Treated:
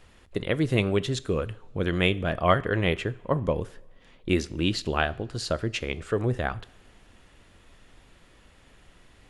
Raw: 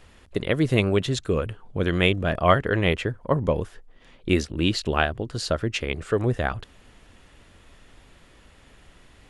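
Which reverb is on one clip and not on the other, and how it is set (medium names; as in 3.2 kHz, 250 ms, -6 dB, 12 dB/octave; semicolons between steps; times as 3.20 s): two-slope reverb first 0.52 s, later 2 s, from -17 dB, DRR 16.5 dB; trim -3 dB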